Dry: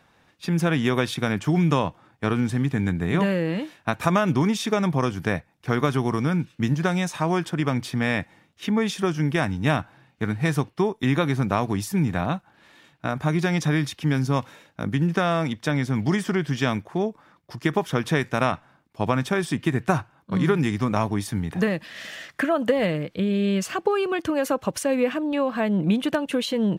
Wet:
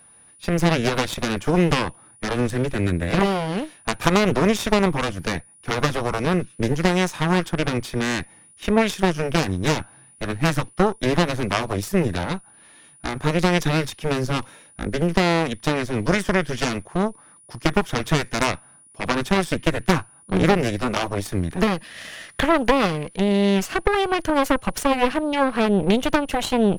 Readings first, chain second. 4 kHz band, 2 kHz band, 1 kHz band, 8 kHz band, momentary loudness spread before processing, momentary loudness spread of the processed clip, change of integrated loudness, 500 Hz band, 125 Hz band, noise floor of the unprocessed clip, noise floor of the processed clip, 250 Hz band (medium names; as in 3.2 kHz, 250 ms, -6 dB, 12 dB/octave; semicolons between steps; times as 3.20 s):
+5.5 dB, +3.5 dB, +4.0 dB, +5.0 dB, 7 LU, 9 LU, +2.0 dB, +3.0 dB, -0.5 dB, -61 dBFS, -51 dBFS, +1.0 dB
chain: Chebyshev shaper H 6 -8 dB, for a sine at -6 dBFS; whistle 9.7 kHz -49 dBFS